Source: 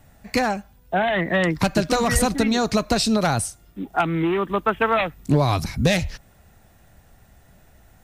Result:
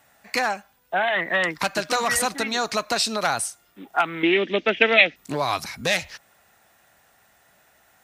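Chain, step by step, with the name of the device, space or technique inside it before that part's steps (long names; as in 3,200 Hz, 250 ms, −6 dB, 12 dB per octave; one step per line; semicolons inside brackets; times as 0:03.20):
0:04.23–0:05.16: drawn EQ curve 120 Hz 0 dB, 240 Hz +13 dB, 640 Hz +5 dB, 1,100 Hz −17 dB, 2,100 Hz +11 dB, 5,800 Hz +11 dB, 10,000 Hz −26 dB
filter by subtraction (in parallel: low-pass filter 1,300 Hz 12 dB per octave + polarity inversion)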